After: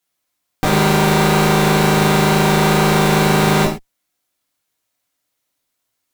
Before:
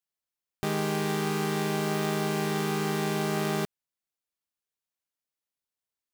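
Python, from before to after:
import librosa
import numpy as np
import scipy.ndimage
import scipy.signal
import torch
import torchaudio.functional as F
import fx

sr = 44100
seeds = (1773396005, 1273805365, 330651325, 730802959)

y = fx.cheby_harmonics(x, sr, harmonics=(4, 5, 8), levels_db=(-10, -17, -17), full_scale_db=-18.5)
y = fx.rev_gated(y, sr, seeds[0], gate_ms=150, shape='falling', drr_db=-3.5)
y = F.gain(torch.from_numpy(y), 7.5).numpy()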